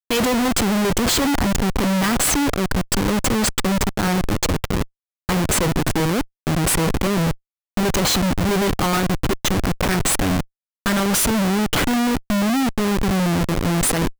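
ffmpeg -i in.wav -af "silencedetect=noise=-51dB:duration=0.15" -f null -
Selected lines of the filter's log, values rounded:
silence_start: 4.88
silence_end: 5.29 | silence_duration: 0.41
silence_start: 6.27
silence_end: 6.47 | silence_duration: 0.20
silence_start: 7.37
silence_end: 7.77 | silence_duration: 0.40
silence_start: 10.46
silence_end: 10.86 | silence_duration: 0.40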